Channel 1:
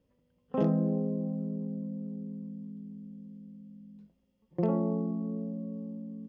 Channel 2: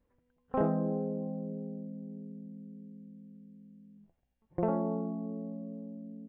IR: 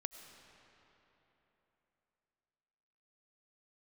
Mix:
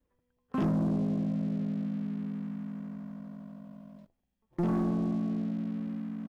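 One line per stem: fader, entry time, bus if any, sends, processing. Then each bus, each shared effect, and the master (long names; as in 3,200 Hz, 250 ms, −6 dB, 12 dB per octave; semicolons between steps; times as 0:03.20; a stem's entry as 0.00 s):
−5.0 dB, 0.00 s, no send, Chebyshev band-stop filter 360–1,000 Hz, order 3; leveller curve on the samples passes 3
−3.0 dB, 3.3 ms, no send, downward compressor, threshold −42 dBFS, peak gain reduction 17.5 dB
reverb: not used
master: no processing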